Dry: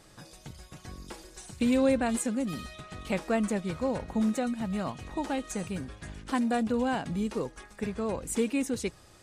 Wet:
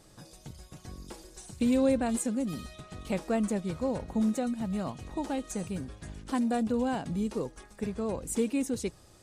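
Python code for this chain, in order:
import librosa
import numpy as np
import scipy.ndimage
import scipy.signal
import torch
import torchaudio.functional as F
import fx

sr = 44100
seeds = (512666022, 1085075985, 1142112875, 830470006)

y = fx.peak_eq(x, sr, hz=1900.0, db=-6.0, octaves=2.1)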